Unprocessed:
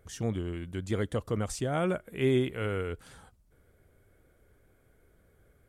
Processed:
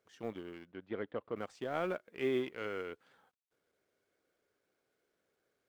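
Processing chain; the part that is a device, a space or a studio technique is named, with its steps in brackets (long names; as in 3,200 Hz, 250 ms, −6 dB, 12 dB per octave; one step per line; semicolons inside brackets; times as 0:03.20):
phone line with mismatched companding (band-pass filter 310–3,300 Hz; mu-law and A-law mismatch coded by A)
0:00.65–0:01.36: high-frequency loss of the air 310 metres
level −3.5 dB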